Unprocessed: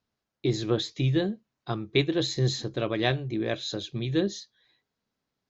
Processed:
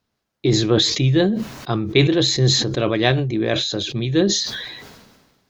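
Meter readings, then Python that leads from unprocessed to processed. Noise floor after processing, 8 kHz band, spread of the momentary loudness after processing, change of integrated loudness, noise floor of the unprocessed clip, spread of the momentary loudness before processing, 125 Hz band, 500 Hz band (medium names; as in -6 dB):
-76 dBFS, no reading, 10 LU, +9.5 dB, -85 dBFS, 7 LU, +9.0 dB, +8.5 dB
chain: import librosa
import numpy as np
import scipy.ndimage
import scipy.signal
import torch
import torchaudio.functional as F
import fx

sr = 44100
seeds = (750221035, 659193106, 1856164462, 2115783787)

y = fx.sustainer(x, sr, db_per_s=41.0)
y = y * librosa.db_to_amplitude(7.5)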